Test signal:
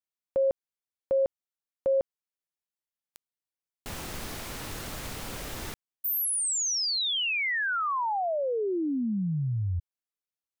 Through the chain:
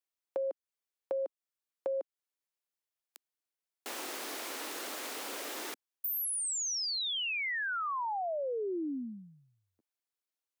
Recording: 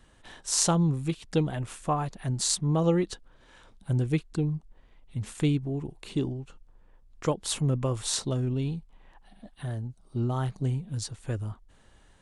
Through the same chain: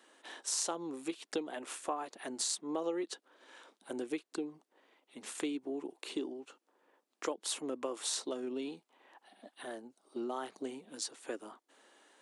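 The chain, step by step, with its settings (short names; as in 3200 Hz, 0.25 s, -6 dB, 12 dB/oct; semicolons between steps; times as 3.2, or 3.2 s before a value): steep high-pass 280 Hz 36 dB/oct; compressor 3:1, threshold -35 dBFS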